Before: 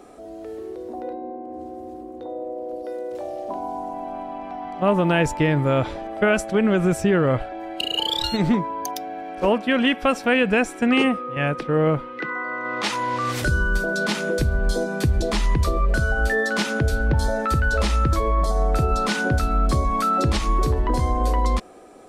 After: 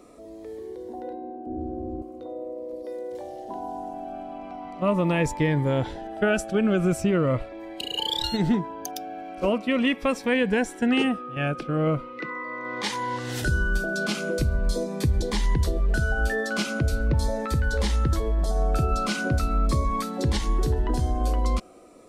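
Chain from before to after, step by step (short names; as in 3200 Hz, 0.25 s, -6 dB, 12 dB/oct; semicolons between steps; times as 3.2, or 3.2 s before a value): 1.46–2.02 tilt -4.5 dB/oct; cascading phaser falling 0.41 Hz; gain -2.5 dB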